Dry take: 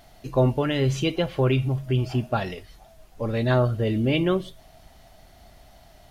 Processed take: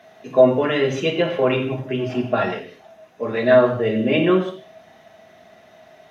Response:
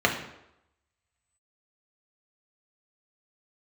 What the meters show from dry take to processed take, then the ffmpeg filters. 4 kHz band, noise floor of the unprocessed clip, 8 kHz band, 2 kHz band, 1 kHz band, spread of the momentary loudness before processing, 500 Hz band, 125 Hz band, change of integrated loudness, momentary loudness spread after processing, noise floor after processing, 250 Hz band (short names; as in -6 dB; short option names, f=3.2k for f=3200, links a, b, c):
+3.0 dB, -53 dBFS, n/a, +7.5 dB, +5.5 dB, 7 LU, +8.5 dB, -5.5 dB, +5.0 dB, 11 LU, -50 dBFS, +4.0 dB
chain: -filter_complex "[0:a]highpass=240[a];[1:a]atrim=start_sample=2205,afade=t=out:st=0.24:d=0.01,atrim=end_sample=11025,asetrate=39690,aresample=44100[b];[a][b]afir=irnorm=-1:irlink=0,volume=-10dB"